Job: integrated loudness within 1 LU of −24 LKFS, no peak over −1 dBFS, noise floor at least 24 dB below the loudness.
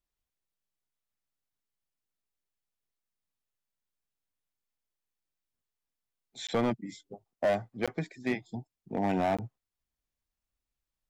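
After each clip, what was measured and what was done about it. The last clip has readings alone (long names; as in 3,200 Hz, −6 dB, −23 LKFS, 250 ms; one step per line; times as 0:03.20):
share of clipped samples 0.7%; peaks flattened at −22.0 dBFS; number of dropouts 3; longest dropout 16 ms; integrated loudness −32.5 LKFS; sample peak −22.0 dBFS; target loudness −24.0 LKFS
→ clipped peaks rebuilt −22 dBFS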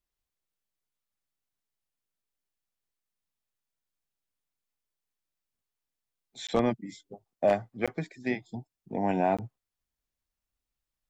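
share of clipped samples 0.0%; number of dropouts 3; longest dropout 16 ms
→ repair the gap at 0:06.47/0:07.86/0:09.37, 16 ms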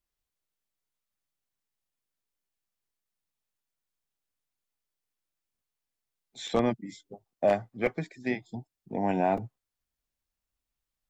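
number of dropouts 0; integrated loudness −30.0 LKFS; sample peak −12.5 dBFS; target loudness −24.0 LKFS
→ level +6 dB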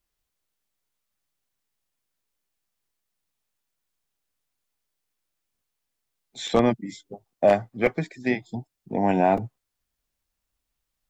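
integrated loudness −24.0 LKFS; sample peak −6.5 dBFS; background noise floor −82 dBFS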